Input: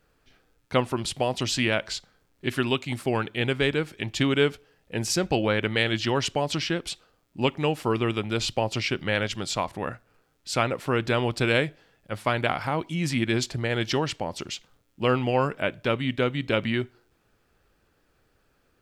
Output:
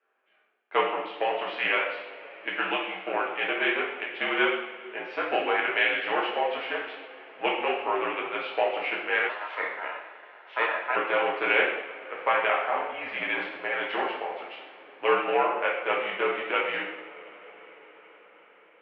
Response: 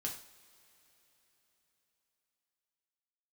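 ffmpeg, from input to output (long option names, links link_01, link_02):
-filter_complex "[0:a]aeval=exprs='0.422*(cos(1*acos(clip(val(0)/0.422,-1,1)))-cos(1*PI/2))+0.0299*(cos(7*acos(clip(val(0)/0.422,-1,1)))-cos(7*PI/2))':channel_layout=same[link_01];[1:a]atrim=start_sample=2205,asetrate=24255,aresample=44100[link_02];[link_01][link_02]afir=irnorm=-1:irlink=0,asettb=1/sr,asplit=3[link_03][link_04][link_05];[link_03]atrim=end=9.294[link_06];[link_04]atrim=start=9.29:end=10.96,asetpts=PTS-STARTPTS,afade=type=in:duration=0.004:curve=qsin,afade=type=out:start_time=1.666:duration=0.004:curve=qsin,aeval=exprs='val(0)*sin(2*PI*1200*n/s)':channel_layout=same[link_07];[link_05]atrim=start=10.956[link_08];[link_06][link_07]acrossfade=duration=0.004:curve1=hsin:curve2=qsin[link_09];[link_09][link_08]acrossfade=duration=0.004:curve1=qsin:curve2=hsin,highpass=frequency=500:width_type=q:width=0.5412,highpass=frequency=500:width_type=q:width=1.307,lowpass=frequency=2800:width_type=q:width=0.5176,lowpass=frequency=2800:width_type=q:width=0.7071,lowpass=frequency=2800:width_type=q:width=1.932,afreqshift=-57"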